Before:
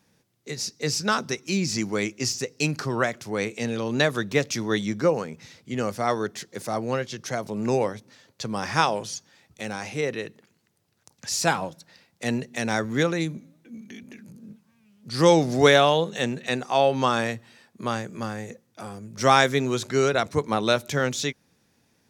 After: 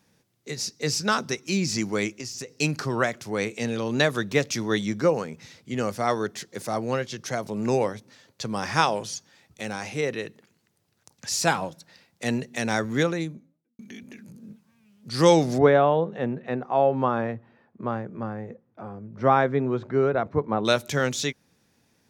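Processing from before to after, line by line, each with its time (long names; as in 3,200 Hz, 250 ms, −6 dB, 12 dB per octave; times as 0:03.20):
0:02.13–0:02.60: downward compressor 10 to 1, threshold −31 dBFS
0:12.93–0:13.79: fade out and dull
0:15.58–0:20.65: low-pass filter 1,200 Hz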